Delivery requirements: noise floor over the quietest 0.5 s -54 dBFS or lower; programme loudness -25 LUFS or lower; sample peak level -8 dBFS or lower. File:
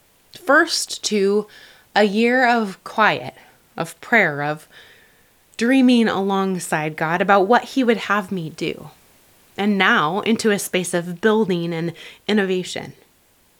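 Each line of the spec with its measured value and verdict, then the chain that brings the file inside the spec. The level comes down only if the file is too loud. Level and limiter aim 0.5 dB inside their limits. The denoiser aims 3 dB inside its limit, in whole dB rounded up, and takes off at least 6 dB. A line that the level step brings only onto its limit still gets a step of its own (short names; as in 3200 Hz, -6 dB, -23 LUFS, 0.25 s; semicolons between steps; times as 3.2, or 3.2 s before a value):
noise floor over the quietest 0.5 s -57 dBFS: OK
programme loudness -19.0 LUFS: fail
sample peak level -1.5 dBFS: fail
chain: gain -6.5 dB; limiter -8.5 dBFS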